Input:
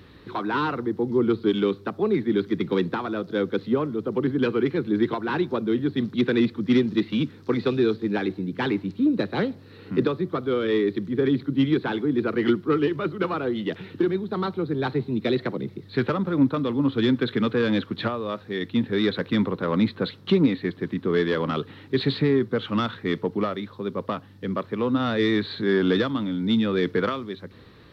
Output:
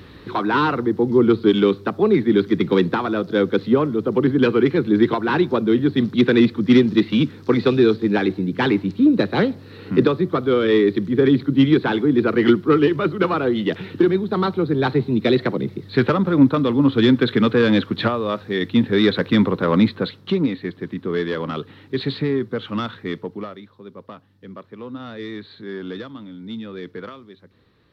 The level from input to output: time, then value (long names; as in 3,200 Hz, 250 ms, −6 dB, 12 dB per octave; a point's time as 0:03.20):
0:19.78 +6.5 dB
0:20.30 −0.5 dB
0:23.02 −0.5 dB
0:23.75 −10 dB